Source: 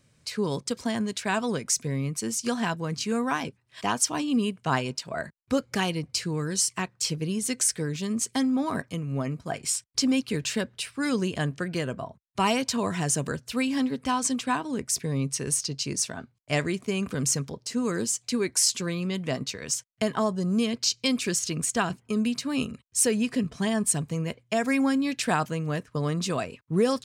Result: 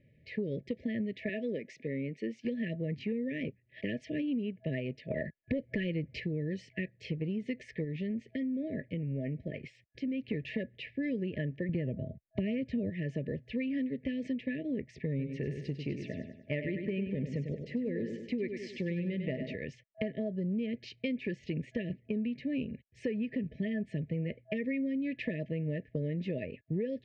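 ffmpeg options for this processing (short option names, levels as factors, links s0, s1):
-filter_complex "[0:a]asettb=1/sr,asplit=3[s0][s1][s2];[s0]atrim=end=1.294[s3];[s1]atrim=start=1.29:end=2.45,asetpts=PTS-STARTPTS,afade=t=in:d=0.004:c=qsin,afade=t=out:st=1.156:d=0.004:c=qsin,highpass=250[s4];[s2]atrim=start=2.446[s5];[s3][s4]acrossfade=d=0.004:c1=hsin:c2=qsin[s6];[s6][s5]acrossfade=d=0.004:c1=qsin:c2=hsin,asettb=1/sr,asplit=3[s7][s8][s9];[s7]atrim=end=5.104[s10];[s8]atrim=start=5.1:end=6.2,asetpts=PTS-STARTPTS,afade=t=in:d=0.004:c=qsin,afade=t=out:st=1.096:d=0.004:c=qsin,aeval=exprs='0.224*sin(PI/2*1.58*val(0)/0.224)':c=same[s11];[s9]atrim=start=6.196[s12];[s10][s11]acrossfade=d=0.004:c1=hsin:c2=qsin[s13];[s13][s12]acrossfade=d=0.004:c1=qsin:c2=hsin,asettb=1/sr,asplit=3[s14][s15][s16];[s14]atrim=end=7.844[s17];[s15]atrim=start=7.84:end=10.24,asetpts=PTS-STARTPTS,afade=t=in:d=0.004:c=qsin,afade=t=out:st=2.396:d=0.004:c=qsin,acompressor=threshold=0.0316:ratio=3:attack=3.2:release=140:knee=1:detection=peak[s18];[s16]atrim=start=10.236[s19];[s17][s18]acrossfade=d=0.004:c1=hsin:c2=qsin[s20];[s20][s19]acrossfade=d=0.004:c1=qsin:c2=hsin,asettb=1/sr,asplit=3[s21][s22][s23];[s21]atrim=end=11.694[s24];[s22]atrim=start=11.69:end=12.9,asetpts=PTS-STARTPTS,afade=t=in:d=0.004:c=qsin,afade=t=out:st=1.206:d=0.004:c=qsin,lowshelf=f=320:g=12[s25];[s23]atrim=start=12.896[s26];[s24][s25]acrossfade=d=0.004:c1=hsin:c2=qsin[s27];[s27][s26]acrossfade=d=0.004:c1=qsin:c2=hsin,asettb=1/sr,asplit=3[s28][s29][s30];[s28]atrim=end=15.094[s31];[s29]atrim=start=15.09:end=19.55,asetpts=PTS-STARTPTS,afade=t=in:d=0.004:c=qsin,afade=t=out:st=4.456:d=0.004:c=qsin,aecho=1:1:99|198|297|396|495:0.398|0.167|0.0702|0.0295|0.0124,atrim=end_sample=196686[s32];[s30]atrim=start=19.546[s33];[s31][s32]acrossfade=d=0.004:c1=hsin:c2=qsin[s34];[s34][s33]acrossfade=d=0.004:c1=qsin:c2=hsin,afftfilt=real='re*(1-between(b*sr/4096,650,1700))':imag='im*(1-between(b*sr/4096,650,1700))':win_size=4096:overlap=0.75,lowpass=f=2300:w=0.5412,lowpass=f=2300:w=1.3066,acompressor=threshold=0.0282:ratio=6"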